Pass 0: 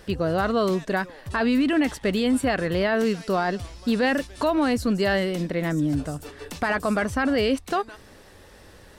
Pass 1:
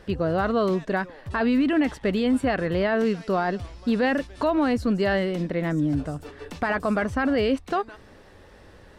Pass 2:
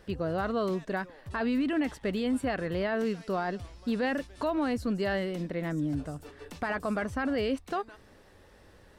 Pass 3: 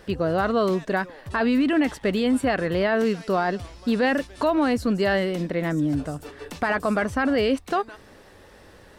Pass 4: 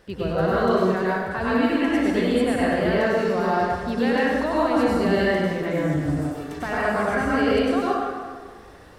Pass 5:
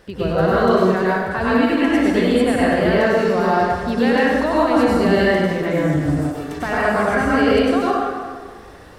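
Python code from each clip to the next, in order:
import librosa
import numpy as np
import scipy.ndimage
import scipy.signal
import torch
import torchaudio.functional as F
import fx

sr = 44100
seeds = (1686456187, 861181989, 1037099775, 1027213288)

y1 = fx.lowpass(x, sr, hz=2600.0, slope=6)
y2 = fx.high_shelf(y1, sr, hz=8200.0, db=8.5)
y2 = F.gain(torch.from_numpy(y2), -7.0).numpy()
y3 = fx.low_shelf(y2, sr, hz=140.0, db=-5.0)
y3 = F.gain(torch.from_numpy(y3), 8.5).numpy()
y4 = fx.rev_plate(y3, sr, seeds[0], rt60_s=1.7, hf_ratio=0.6, predelay_ms=85, drr_db=-7.5)
y4 = F.gain(torch.from_numpy(y4), -6.5).numpy()
y5 = fx.end_taper(y4, sr, db_per_s=140.0)
y5 = F.gain(torch.from_numpy(y5), 5.0).numpy()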